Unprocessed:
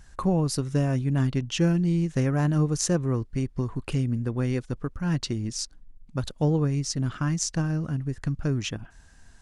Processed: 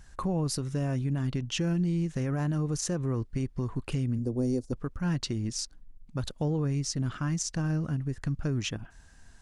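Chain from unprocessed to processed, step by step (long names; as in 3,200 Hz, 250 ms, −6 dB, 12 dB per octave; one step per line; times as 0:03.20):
0:04.18–0:04.73: drawn EQ curve 110 Hz 0 dB, 160 Hz −13 dB, 250 Hz +3 dB, 640 Hz +1 dB, 1,500 Hz −20 dB, 3,300 Hz −16 dB, 4,800 Hz +2 dB
brickwall limiter −20 dBFS, peak gain reduction 10 dB
level −1.5 dB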